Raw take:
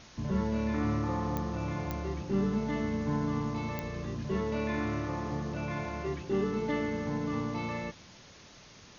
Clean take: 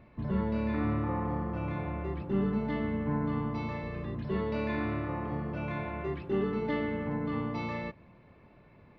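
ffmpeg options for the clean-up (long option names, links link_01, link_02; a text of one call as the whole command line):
ffmpeg -i in.wav -af "adeclick=threshold=4,afwtdn=0.0028" out.wav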